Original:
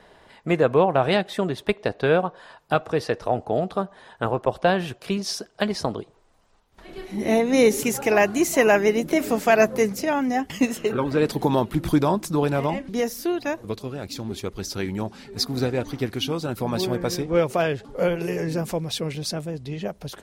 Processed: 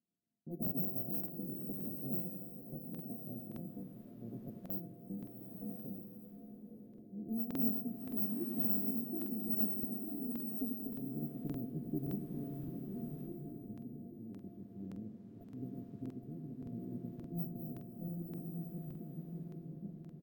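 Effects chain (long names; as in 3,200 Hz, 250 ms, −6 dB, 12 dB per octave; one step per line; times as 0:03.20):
samples sorted by size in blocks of 64 samples
noise gate −42 dBFS, range −16 dB
high-pass filter 710 Hz 12 dB per octave
repeating echo 93 ms, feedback 57%, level −9.5 dB
low-pass that shuts in the quiet parts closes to 1,700 Hz, open at −16.5 dBFS
inverse Chebyshev band-stop filter 1,100–6,700 Hz, stop band 80 dB
regular buffer underruns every 0.57 s, samples 2,048, repeat, from 0:00.62
slow-attack reverb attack 1,080 ms, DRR 4 dB
level +10 dB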